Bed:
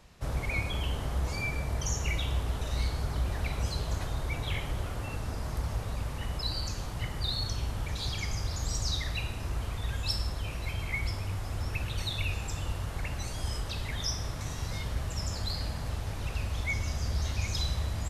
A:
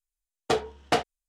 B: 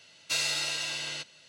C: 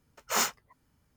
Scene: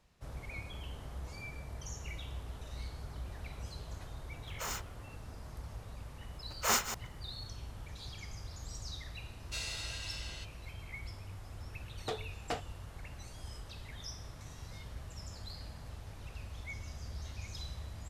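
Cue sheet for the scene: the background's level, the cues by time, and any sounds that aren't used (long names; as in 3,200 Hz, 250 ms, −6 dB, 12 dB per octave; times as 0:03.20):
bed −12.5 dB
0:04.30: mix in C −5.5 dB + brickwall limiter −23.5 dBFS
0:06.33: mix in C −2.5 dB + delay that plays each chunk backwards 123 ms, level −10.5 dB
0:09.22: mix in B −11.5 dB
0:11.58: mix in A −14 dB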